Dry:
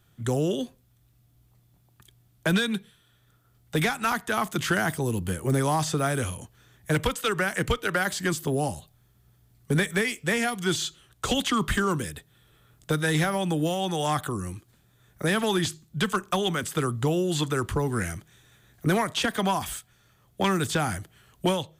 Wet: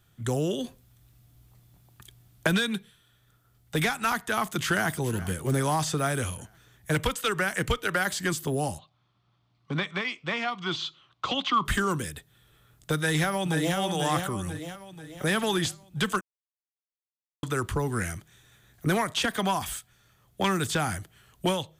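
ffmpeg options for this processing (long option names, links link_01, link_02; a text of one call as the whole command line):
ffmpeg -i in.wav -filter_complex "[0:a]asettb=1/sr,asplit=3[link_01][link_02][link_03];[link_01]atrim=end=0.644[link_04];[link_02]atrim=start=0.64:end=2.47,asetpts=PTS-STARTPTS,afade=type=in:duration=0.004:curve=qsin,afade=type=out:start_time=1.826:duration=0.004:curve=qsin,acontrast=36[link_05];[link_03]atrim=start=2.466[link_06];[link_04][link_05]acrossfade=duration=0.004:curve1=hsin:curve2=qsin[link_07];[link_07][link_06]acrossfade=duration=0.004:curve1=qsin:curve2=hsin,asplit=2[link_08][link_09];[link_09]afade=type=in:start_time=4.31:duration=0.01,afade=type=out:start_time=5:duration=0.01,aecho=0:1:420|840|1260|1680:0.141254|0.0706269|0.0353134|0.0176567[link_10];[link_08][link_10]amix=inputs=2:normalize=0,asplit=3[link_11][link_12][link_13];[link_11]afade=type=out:start_time=8.77:duration=0.02[link_14];[link_12]highpass=170,equalizer=frequency=220:width_type=q:width=4:gain=-6,equalizer=frequency=430:width_type=q:width=4:gain=-10,equalizer=frequency=1100:width_type=q:width=4:gain=8,equalizer=frequency=1700:width_type=q:width=4:gain=-8,lowpass=frequency=4400:width=0.5412,lowpass=frequency=4400:width=1.3066,afade=type=in:start_time=8.77:duration=0.02,afade=type=out:start_time=11.64:duration=0.02[link_15];[link_13]afade=type=in:start_time=11.64:duration=0.02[link_16];[link_14][link_15][link_16]amix=inputs=3:normalize=0,asplit=2[link_17][link_18];[link_18]afade=type=in:start_time=12.96:duration=0.01,afade=type=out:start_time=13.77:duration=0.01,aecho=0:1:490|980|1470|1960|2450|2940:0.562341|0.281171|0.140585|0.0702927|0.0351463|0.0175732[link_19];[link_17][link_19]amix=inputs=2:normalize=0,asplit=3[link_20][link_21][link_22];[link_20]atrim=end=16.21,asetpts=PTS-STARTPTS,afade=type=out:start_time=16.206:duration=0.004:curve=hsin[link_23];[link_21]atrim=start=16.21:end=17.43,asetpts=PTS-STARTPTS,volume=0[link_24];[link_22]atrim=start=17.43,asetpts=PTS-STARTPTS,afade=type=in:duration=0.004:curve=hsin[link_25];[link_23][link_24][link_25]concat=n=3:v=0:a=1,equalizer=frequency=300:width=0.41:gain=-2.5" out.wav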